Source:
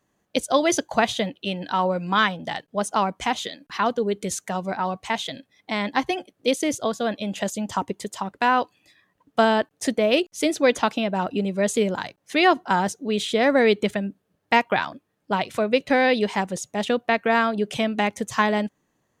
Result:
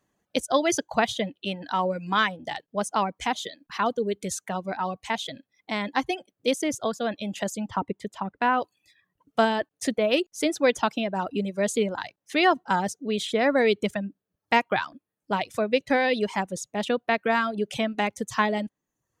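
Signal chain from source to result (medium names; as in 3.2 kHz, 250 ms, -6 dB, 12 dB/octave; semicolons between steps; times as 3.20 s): 7.69–8.62 s: tone controls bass +3 dB, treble -14 dB; reverb removal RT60 0.68 s; trim -2.5 dB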